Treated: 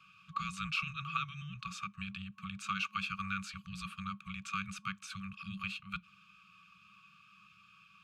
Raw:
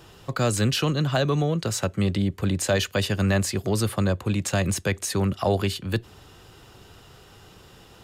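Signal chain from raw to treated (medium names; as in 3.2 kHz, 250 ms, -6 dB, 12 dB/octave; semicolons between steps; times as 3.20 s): frequency shift -290 Hz; FFT band-reject 210–1100 Hz; vowel filter a; trim +7 dB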